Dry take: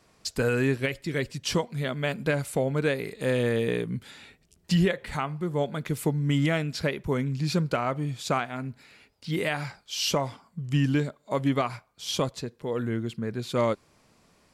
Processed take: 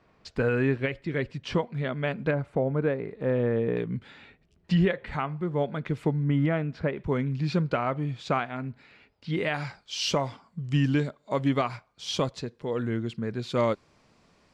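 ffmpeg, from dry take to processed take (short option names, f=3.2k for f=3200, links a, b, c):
-af "asetnsamples=n=441:p=0,asendcmd='2.31 lowpass f 1300;3.77 lowpass f 2800;6.24 lowpass f 1600;6.97 lowpass f 3300;9.54 lowpass f 5800',lowpass=2.5k"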